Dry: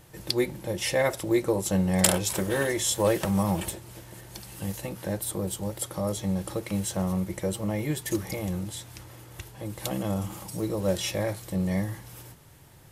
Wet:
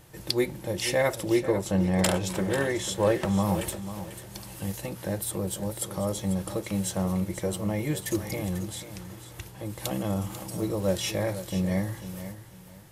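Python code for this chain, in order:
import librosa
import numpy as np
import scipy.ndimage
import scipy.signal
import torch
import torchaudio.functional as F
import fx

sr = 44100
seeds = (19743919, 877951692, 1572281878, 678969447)

p1 = fx.lowpass(x, sr, hz=3400.0, slope=6, at=(1.36, 3.43))
y = p1 + fx.echo_feedback(p1, sr, ms=493, feedback_pct=24, wet_db=-12, dry=0)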